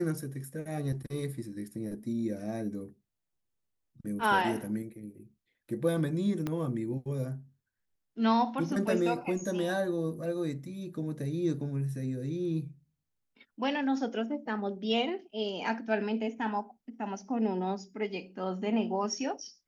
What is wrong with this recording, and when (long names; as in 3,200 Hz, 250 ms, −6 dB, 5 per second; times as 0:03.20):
0:06.47: click −20 dBFS